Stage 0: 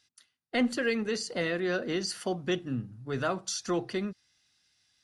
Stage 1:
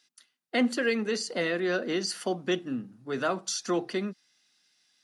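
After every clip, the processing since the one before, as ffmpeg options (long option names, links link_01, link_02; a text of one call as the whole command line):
ffmpeg -i in.wav -af "highpass=frequency=180:width=0.5412,highpass=frequency=180:width=1.3066,volume=2dB" out.wav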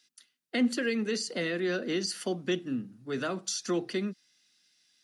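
ffmpeg -i in.wav -filter_complex "[0:a]equalizer=frequency=860:width_type=o:width=1.5:gain=-7.5,acrossover=split=370[link_01][link_02];[link_02]acompressor=threshold=-31dB:ratio=3[link_03];[link_01][link_03]amix=inputs=2:normalize=0,volume=1dB" out.wav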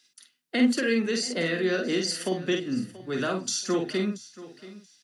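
ffmpeg -i in.wav -filter_complex "[0:a]asplit=2[link_01][link_02];[link_02]adelay=48,volume=-4dB[link_03];[link_01][link_03]amix=inputs=2:normalize=0,aecho=1:1:681|1362:0.133|0.0307,volume=3dB" out.wav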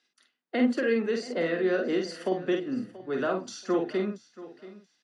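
ffmpeg -i in.wav -af "bandpass=frequency=640:width_type=q:width=0.7:csg=0,volume=2.5dB" out.wav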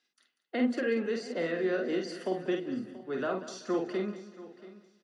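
ffmpeg -i in.wav -af "aecho=1:1:191|382|573|764:0.2|0.0738|0.0273|0.0101,volume=-4dB" out.wav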